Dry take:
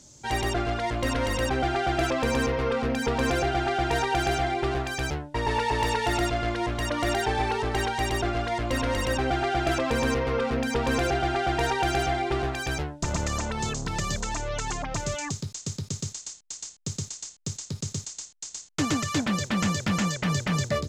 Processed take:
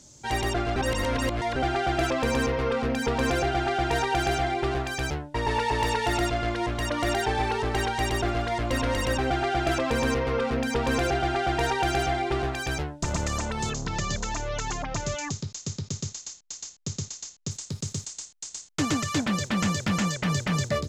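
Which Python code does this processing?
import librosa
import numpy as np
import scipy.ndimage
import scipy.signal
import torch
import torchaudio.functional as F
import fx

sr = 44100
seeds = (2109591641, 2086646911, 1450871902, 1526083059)

y = fx.echo_feedback(x, sr, ms=240, feedback_pct=54, wet_db=-22.0, at=(7.15, 9.32))
y = fx.steep_lowpass(y, sr, hz=7500.0, slope=96, at=(13.7, 17.51))
y = fx.edit(y, sr, fx.reverse_span(start_s=0.76, length_s=0.8), tone=tone)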